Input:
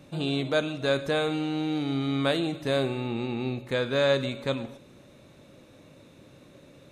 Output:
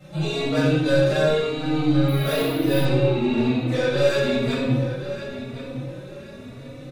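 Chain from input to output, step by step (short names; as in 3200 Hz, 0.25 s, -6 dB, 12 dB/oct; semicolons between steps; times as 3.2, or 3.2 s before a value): 3.4–3.93 HPF 470 Hz 6 dB/oct; soft clip -25.5 dBFS, distortion -10 dB; darkening echo 1.065 s, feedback 29%, low-pass 5000 Hz, level -11.5 dB; shoebox room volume 1000 m³, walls mixed, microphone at 6.8 m; 2.08–2.85 careless resampling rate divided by 3×, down filtered, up hold; endless flanger 3.4 ms +1 Hz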